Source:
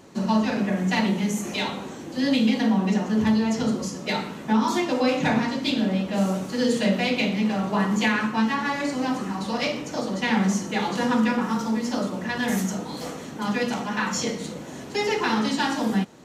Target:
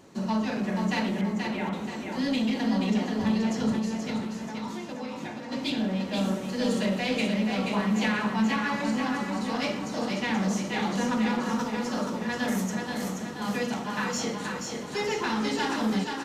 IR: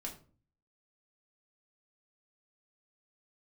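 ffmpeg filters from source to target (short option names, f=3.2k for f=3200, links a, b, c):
-filter_complex "[0:a]asettb=1/sr,asplit=3[a][b][c];[a]atrim=end=1.214[d];[b]atrim=start=1.21:end=1.73,asetpts=PTS-STARTPTS,afade=t=in:d=0.004:c=qsin,afade=t=out:st=0.516:d=0.004:c=qsin,lowpass=f=2.2k:w=0.5412,lowpass=f=2.2k:w=1.3066[e];[c]atrim=start=1.726[f];[d][e]acrossfade=d=0.004:c1=hsin:c2=qsin[g];[g][f]acrossfade=d=0.004:c1=qsin:c2=hsin,asplit=3[h][i][j];[h]afade=t=out:st=3.78:d=0.02[k];[i]acompressor=threshold=-32dB:ratio=6,afade=t=in:st=3.78:d=0.02,afade=t=out:st=5.51:d=0.02[l];[j]afade=t=in:st=5.51:d=0.02[m];[k][l][m]amix=inputs=3:normalize=0,asoftclip=type=tanh:threshold=-15.5dB,aecho=1:1:480|960|1440|1920|2400|2880:0.596|0.28|0.132|0.0618|0.0291|0.0137,volume=-4dB"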